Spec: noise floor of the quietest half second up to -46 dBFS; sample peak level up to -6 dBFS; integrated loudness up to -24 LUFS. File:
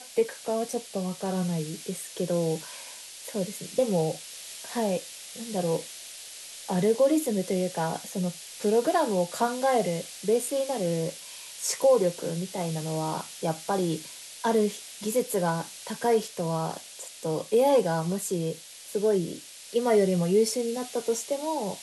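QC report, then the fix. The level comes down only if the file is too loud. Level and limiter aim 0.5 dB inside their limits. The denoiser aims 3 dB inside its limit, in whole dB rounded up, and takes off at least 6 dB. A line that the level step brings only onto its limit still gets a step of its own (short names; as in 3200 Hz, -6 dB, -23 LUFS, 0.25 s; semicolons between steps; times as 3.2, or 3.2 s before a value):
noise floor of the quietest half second -43 dBFS: fail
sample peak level -12.0 dBFS: OK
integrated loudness -28.0 LUFS: OK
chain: denoiser 6 dB, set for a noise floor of -43 dBFS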